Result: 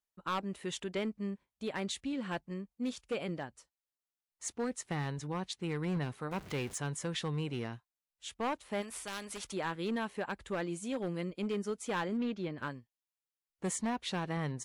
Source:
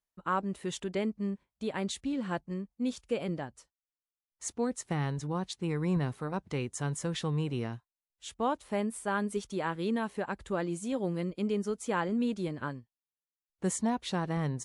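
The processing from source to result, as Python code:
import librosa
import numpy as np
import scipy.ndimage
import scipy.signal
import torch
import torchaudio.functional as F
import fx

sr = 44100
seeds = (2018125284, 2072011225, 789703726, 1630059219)

y = fx.zero_step(x, sr, step_db=-41.5, at=(6.31, 6.78))
y = fx.low_shelf(y, sr, hz=210.0, db=-3.5)
y = np.clip(y, -10.0 ** (-27.0 / 20.0), 10.0 ** (-27.0 / 20.0))
y = fx.moving_average(y, sr, points=5, at=(12.17, 12.58))
y = fx.dynamic_eq(y, sr, hz=2400.0, q=0.87, threshold_db=-54.0, ratio=4.0, max_db=4)
y = fx.spectral_comp(y, sr, ratio=2.0, at=(8.81, 9.52), fade=0.02)
y = y * 10.0 ** (-2.5 / 20.0)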